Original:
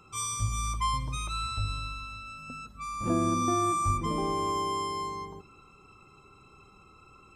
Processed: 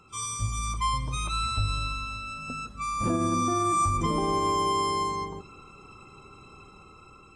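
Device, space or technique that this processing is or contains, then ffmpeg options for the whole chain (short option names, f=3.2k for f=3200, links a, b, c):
low-bitrate web radio: -af "dynaudnorm=f=490:g=5:m=6dB,alimiter=limit=-17dB:level=0:latency=1:release=118" -ar 24000 -c:a aac -b:a 32k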